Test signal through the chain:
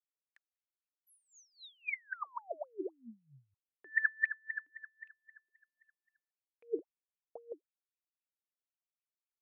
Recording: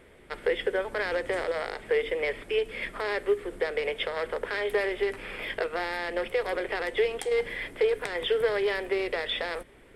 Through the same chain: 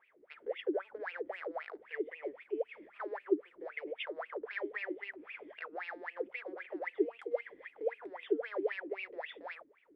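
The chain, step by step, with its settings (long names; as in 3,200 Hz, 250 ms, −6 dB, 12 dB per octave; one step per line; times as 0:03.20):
LFO wah 3.8 Hz 290–2,700 Hz, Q 15
level +3 dB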